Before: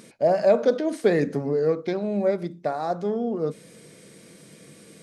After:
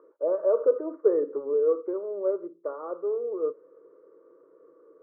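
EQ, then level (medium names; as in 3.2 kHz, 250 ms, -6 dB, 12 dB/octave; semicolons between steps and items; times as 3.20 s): high-pass 290 Hz 24 dB/octave; rippled Chebyshev low-pass 1.7 kHz, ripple 6 dB; static phaser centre 1.1 kHz, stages 8; 0.0 dB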